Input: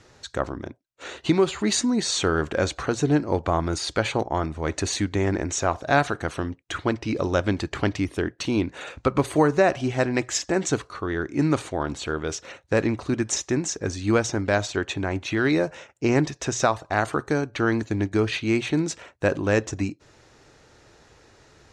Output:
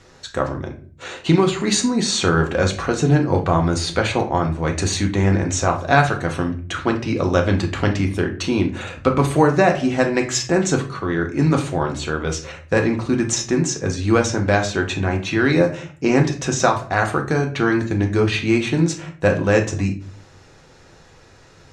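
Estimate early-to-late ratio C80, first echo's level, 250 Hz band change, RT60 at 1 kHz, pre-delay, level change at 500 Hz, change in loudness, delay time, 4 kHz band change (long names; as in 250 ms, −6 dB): 16.5 dB, no echo audible, +5.0 dB, 0.40 s, 4 ms, +4.5 dB, +5.0 dB, no echo audible, +4.5 dB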